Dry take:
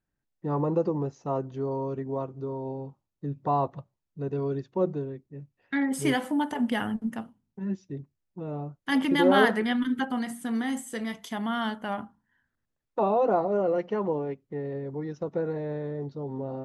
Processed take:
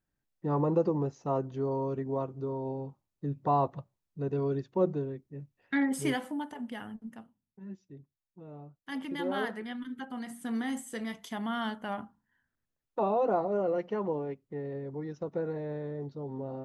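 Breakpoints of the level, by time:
0:05.82 −1 dB
0:06.63 −12.5 dB
0:09.98 −12.5 dB
0:10.49 −4 dB

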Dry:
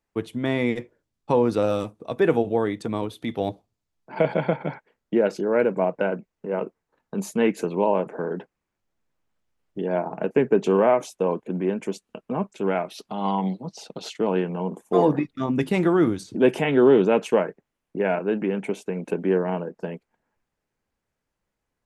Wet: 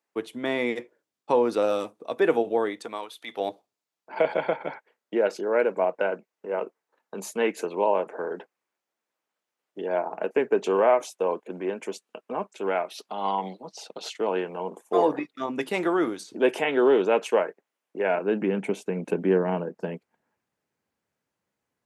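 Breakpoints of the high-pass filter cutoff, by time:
0:02.63 340 Hz
0:03.19 1,200 Hz
0:03.42 420 Hz
0:18.01 420 Hz
0:18.57 120 Hz

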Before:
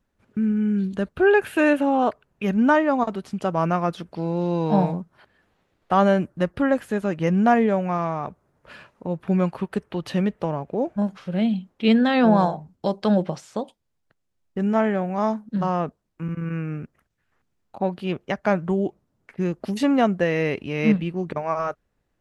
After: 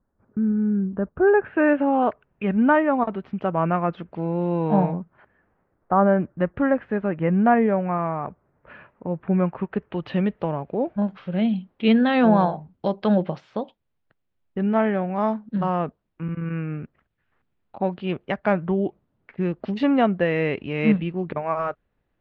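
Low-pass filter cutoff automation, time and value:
low-pass filter 24 dB per octave
0:01.19 1,400 Hz
0:02.00 2,700 Hz
0:04.92 2,700 Hz
0:05.96 1,400 Hz
0:06.32 2,300 Hz
0:09.55 2,300 Hz
0:10.23 3,600 Hz

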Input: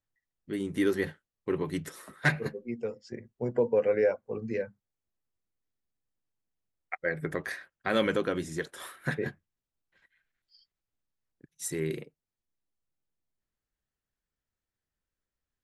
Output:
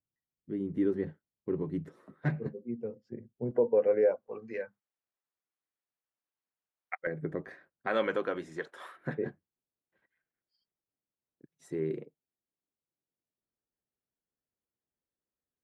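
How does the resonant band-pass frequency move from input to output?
resonant band-pass, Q 0.68
200 Hz
from 0:03.51 480 Hz
from 0:04.28 1,200 Hz
from 0:07.07 260 Hz
from 0:07.87 880 Hz
from 0:08.97 370 Hz

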